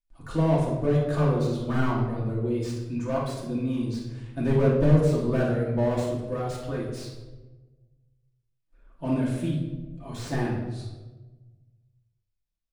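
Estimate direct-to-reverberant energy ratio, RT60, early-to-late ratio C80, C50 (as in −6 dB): −6.5 dB, 1.2 s, 5.0 dB, 2.5 dB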